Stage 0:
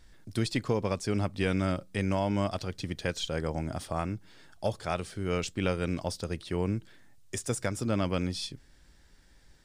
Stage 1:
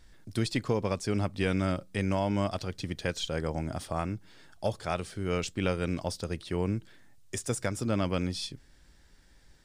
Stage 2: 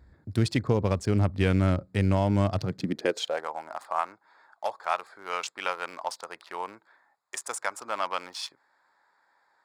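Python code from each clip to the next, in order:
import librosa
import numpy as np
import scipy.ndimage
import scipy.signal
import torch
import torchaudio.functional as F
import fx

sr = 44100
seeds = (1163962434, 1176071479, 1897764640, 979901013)

y1 = x
y2 = fx.wiener(y1, sr, points=15)
y2 = fx.filter_sweep_highpass(y2, sr, from_hz=72.0, to_hz=950.0, start_s=2.44, end_s=3.48, q=2.5)
y2 = F.gain(torch.from_numpy(y2), 3.0).numpy()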